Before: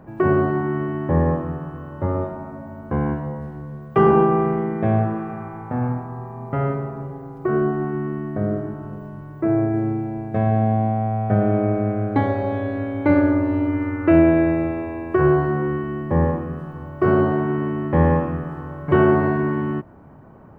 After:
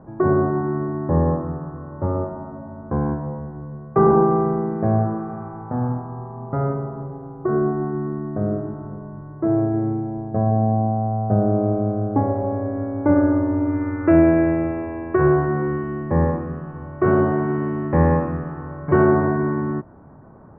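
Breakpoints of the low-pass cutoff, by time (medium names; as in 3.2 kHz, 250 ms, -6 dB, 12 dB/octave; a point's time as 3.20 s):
low-pass 24 dB/octave
9.87 s 1.4 kHz
10.62 s 1.1 kHz
12.18 s 1.1 kHz
13.64 s 1.6 kHz
14.31 s 2.2 kHz
18.48 s 2.2 kHz
19.26 s 1.7 kHz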